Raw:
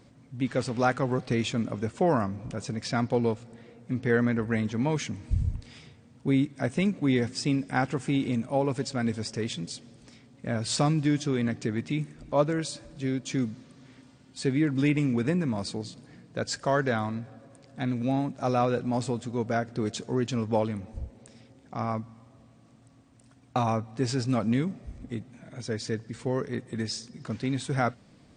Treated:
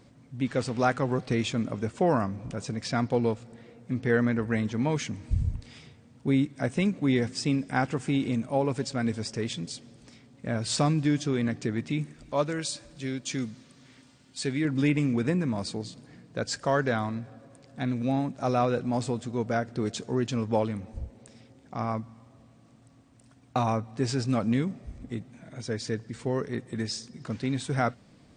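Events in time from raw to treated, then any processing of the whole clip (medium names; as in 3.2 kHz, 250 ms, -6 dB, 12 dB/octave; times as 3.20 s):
12.14–14.65 s: tilt shelf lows -4 dB, about 1.5 kHz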